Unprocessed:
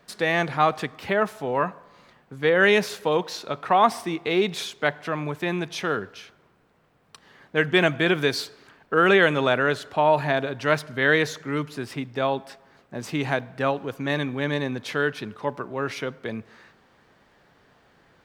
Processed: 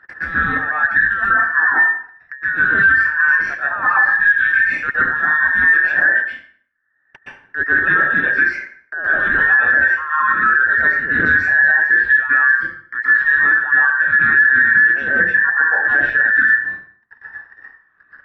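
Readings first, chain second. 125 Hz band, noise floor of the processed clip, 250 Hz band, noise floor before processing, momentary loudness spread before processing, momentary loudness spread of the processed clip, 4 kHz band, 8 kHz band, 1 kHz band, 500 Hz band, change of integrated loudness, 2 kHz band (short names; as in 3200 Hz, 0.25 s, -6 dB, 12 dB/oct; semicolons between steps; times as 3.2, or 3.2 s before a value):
-5.5 dB, -58 dBFS, -5.5 dB, -60 dBFS, 12 LU, 7 LU, under -10 dB, under -10 dB, +4.0 dB, -11.0 dB, +10.5 dB, +17.0 dB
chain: band inversion scrambler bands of 2000 Hz; reverb removal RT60 0.75 s; reverse; compressor 12:1, threshold -32 dBFS, peak gain reduction 19 dB; reverse; synth low-pass 1700 Hz, resonance Q 11; phaser 0.26 Hz, delay 1.2 ms, feedback 40%; gate -41 dBFS, range -52 dB; upward compressor, threshold -27 dBFS; plate-style reverb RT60 0.54 s, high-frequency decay 0.75×, pre-delay 0.11 s, DRR -9.5 dB; maximiser +4.5 dB; Doppler distortion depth 0.11 ms; gain -4.5 dB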